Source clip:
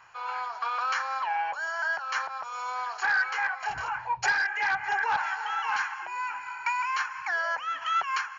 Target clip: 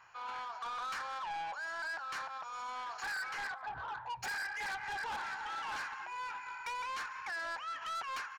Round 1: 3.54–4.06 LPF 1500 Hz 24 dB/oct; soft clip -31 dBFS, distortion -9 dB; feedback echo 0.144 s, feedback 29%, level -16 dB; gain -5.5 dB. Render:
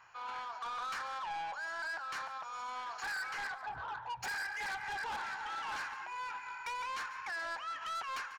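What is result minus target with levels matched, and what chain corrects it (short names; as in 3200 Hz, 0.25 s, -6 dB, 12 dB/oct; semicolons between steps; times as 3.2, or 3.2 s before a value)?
echo-to-direct +11.5 dB
3.54–4.06 LPF 1500 Hz 24 dB/oct; soft clip -31 dBFS, distortion -9 dB; feedback echo 0.144 s, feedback 29%, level -27.5 dB; gain -5.5 dB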